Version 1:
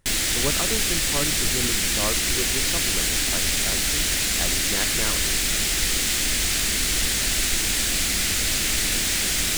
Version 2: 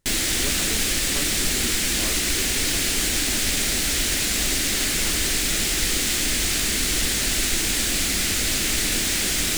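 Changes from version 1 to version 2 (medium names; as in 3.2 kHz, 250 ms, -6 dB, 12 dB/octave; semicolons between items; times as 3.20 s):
speech -10.5 dB; master: add peaking EQ 310 Hz +4.5 dB 1.2 oct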